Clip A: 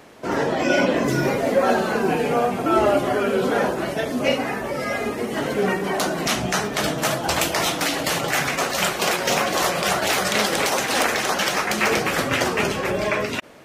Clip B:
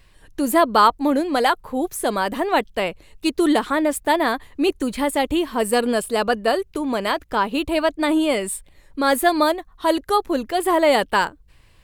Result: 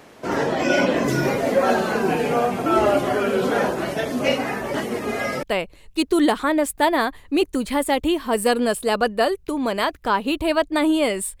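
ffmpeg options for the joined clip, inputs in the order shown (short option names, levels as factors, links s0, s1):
-filter_complex "[0:a]apad=whole_dur=11.4,atrim=end=11.4,asplit=2[s0][s1];[s0]atrim=end=4.742[s2];[s1]atrim=start=4.738:end=5.432,asetpts=PTS-STARTPTS,areverse[s3];[1:a]atrim=start=2.698:end=8.67[s4];[s2][s3]acrossfade=d=0.004:c1=hsin:c2=hsin[s5];[s5][s4]acrossfade=d=0.004:c1=hsin:c2=hsin"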